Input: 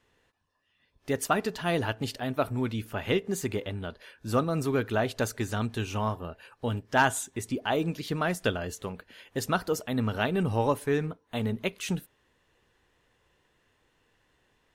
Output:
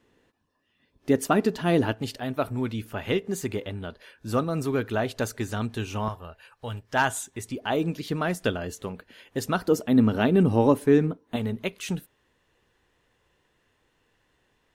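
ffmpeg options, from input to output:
-af "asetnsamples=n=441:p=0,asendcmd='1.94 equalizer g 1.5;6.08 equalizer g -10;6.92 equalizer g -2.5;7.63 equalizer g 3.5;9.68 equalizer g 11.5;11.36 equalizer g 1',equalizer=f=270:t=o:w=1.7:g=10.5"

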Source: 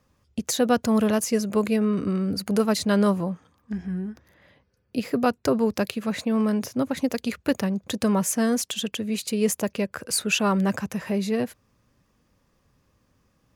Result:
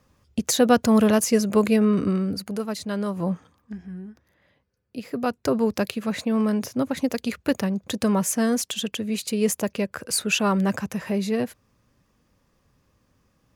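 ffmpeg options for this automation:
-af "volume=23dB,afade=t=out:st=2.02:d=0.53:silence=0.298538,afade=t=in:st=3.14:d=0.18:silence=0.251189,afade=t=out:st=3.32:d=0.45:silence=0.251189,afade=t=in:st=5.03:d=0.59:silence=0.421697"

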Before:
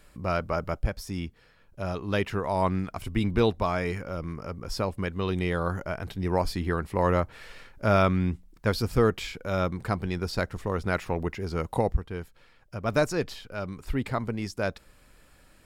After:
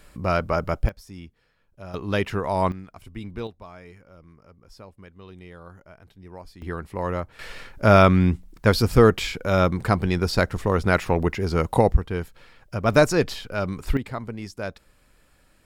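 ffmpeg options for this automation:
-af "asetnsamples=n=441:p=0,asendcmd='0.89 volume volume -7.5dB;1.94 volume volume 3dB;2.72 volume volume -9.5dB;3.47 volume volume -16dB;6.62 volume volume -3.5dB;7.39 volume volume 7.5dB;13.97 volume volume -2.5dB',volume=5dB"

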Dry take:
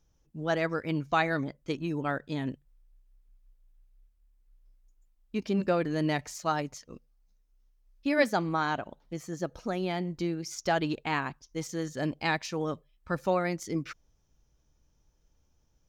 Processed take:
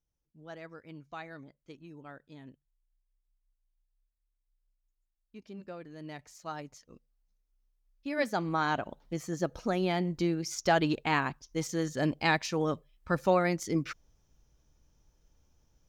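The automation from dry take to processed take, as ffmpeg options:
-af "volume=2dB,afade=t=in:st=5.97:d=0.91:silence=0.354813,afade=t=in:st=8.1:d=0.8:silence=0.316228"

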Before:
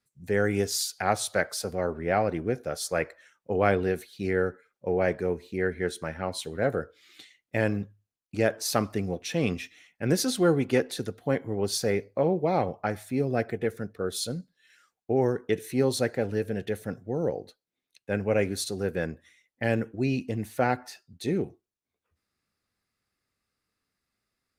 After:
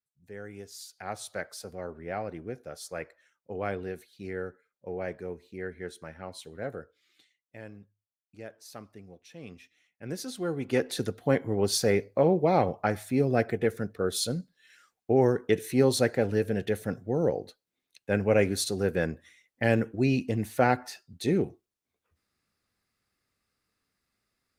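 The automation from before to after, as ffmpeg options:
-af "volume=11.5dB,afade=t=in:st=0.72:d=0.57:silence=0.398107,afade=t=out:st=6.63:d=0.93:silence=0.334965,afade=t=in:st=9.38:d=1.18:silence=0.316228,afade=t=in:st=10.56:d=0.45:silence=0.281838"

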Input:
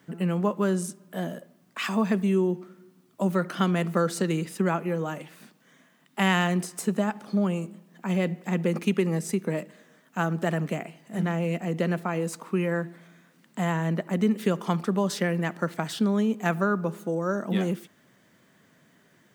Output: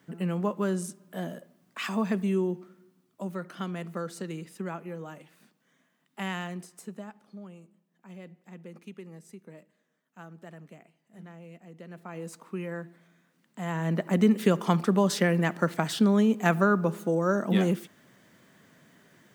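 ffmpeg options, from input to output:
-af "volume=18.5dB,afade=t=out:st=2.39:d=0.9:silence=0.446684,afade=t=out:st=6.22:d=1.17:silence=0.334965,afade=t=in:st=11.88:d=0.4:silence=0.281838,afade=t=in:st=13.6:d=0.52:silence=0.281838"

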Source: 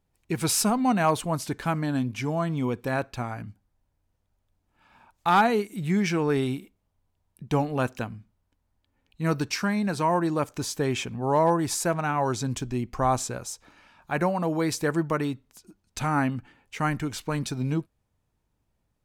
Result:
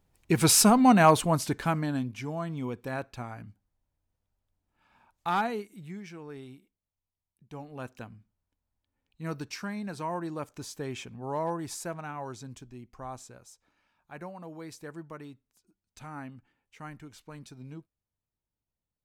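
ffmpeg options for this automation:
-af "volume=13dB,afade=t=out:st=1.02:d=1.13:silence=0.281838,afade=t=out:st=5.27:d=0.74:silence=0.251189,afade=t=in:st=7.54:d=0.59:silence=0.354813,afade=t=out:st=11.7:d=1.03:silence=0.446684"

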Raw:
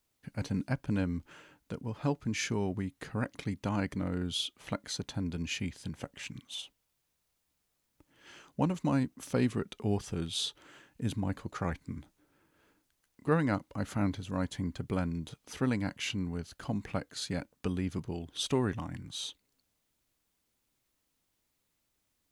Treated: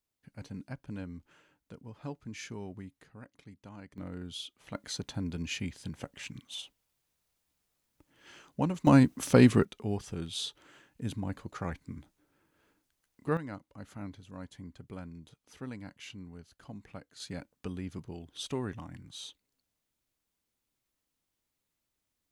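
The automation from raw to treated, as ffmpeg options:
-af "asetnsamples=n=441:p=0,asendcmd='3.02 volume volume -16.5dB;3.98 volume volume -7.5dB;4.75 volume volume -0.5dB;8.87 volume volume 9dB;9.65 volume volume -2.5dB;13.37 volume volume -11.5dB;17.2 volume volume -5.5dB',volume=-9.5dB"

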